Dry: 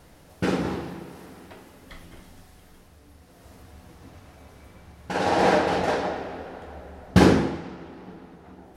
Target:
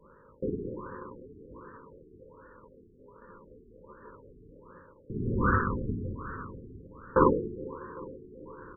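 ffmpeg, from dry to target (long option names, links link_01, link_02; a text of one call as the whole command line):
ffmpeg -i in.wav -filter_complex "[0:a]adynamicequalizer=threshold=0.0158:dfrequency=280:dqfactor=0.79:tfrequency=280:tqfactor=0.79:attack=5:release=100:ratio=0.375:range=2.5:mode=cutabove:tftype=bell,areverse,acompressor=mode=upward:threshold=-35dB:ratio=2.5,areverse,aeval=exprs='val(0)+0.00562*(sin(2*PI*50*n/s)+sin(2*PI*2*50*n/s)/2+sin(2*PI*3*50*n/s)/3+sin(2*PI*4*50*n/s)/4+sin(2*PI*5*50*n/s)/5)':channel_layout=same,aeval=exprs='val(0)*sin(2*PI*700*n/s)':channel_layout=same,asuperstop=centerf=720:order=8:qfactor=1.6,asplit=2[link_01][link_02];[link_02]aecho=0:1:403|806|1209|1612|2015:0.126|0.0705|0.0395|0.0221|0.0124[link_03];[link_01][link_03]amix=inputs=2:normalize=0,afftfilt=real='re*lt(b*sr/1024,430*pow(1900/430,0.5+0.5*sin(2*PI*1.3*pts/sr)))':imag='im*lt(b*sr/1024,430*pow(1900/430,0.5+0.5*sin(2*PI*1.3*pts/sr)))':win_size=1024:overlap=0.75" out.wav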